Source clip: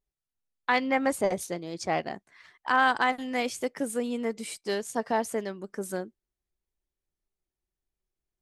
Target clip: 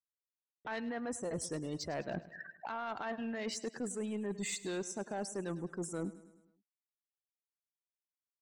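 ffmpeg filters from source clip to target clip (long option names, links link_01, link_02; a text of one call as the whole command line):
ffmpeg -i in.wav -filter_complex "[0:a]afftfilt=real='re*gte(hypot(re,im),0.00794)':imag='im*gte(hypot(re,im),0.00794)':win_size=1024:overlap=0.75,equalizer=frequency=96:width_type=o:width=0.68:gain=6,acrossover=split=1100[link_01][link_02];[link_01]acompressor=mode=upward:threshold=-33dB:ratio=2.5[link_03];[link_03][link_02]amix=inputs=2:normalize=0,alimiter=limit=-22.5dB:level=0:latency=1:release=173,areverse,acompressor=threshold=-43dB:ratio=10,areverse,asoftclip=type=tanh:threshold=-38.5dB,asetrate=39289,aresample=44100,atempo=1.12246,aecho=1:1:104|208|312|416|520:0.141|0.0749|0.0397|0.021|0.0111,volume=9dB" out.wav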